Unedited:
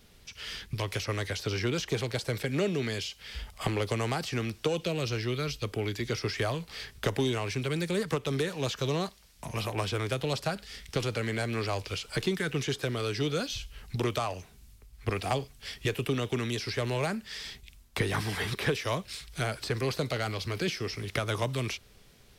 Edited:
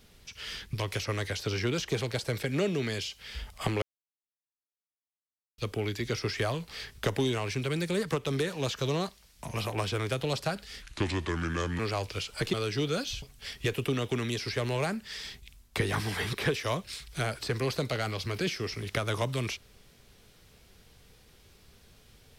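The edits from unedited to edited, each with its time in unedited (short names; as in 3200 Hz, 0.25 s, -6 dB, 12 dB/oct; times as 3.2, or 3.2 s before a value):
3.82–5.58 mute
10.82–11.55 speed 75%
12.29–12.96 cut
13.65–15.43 cut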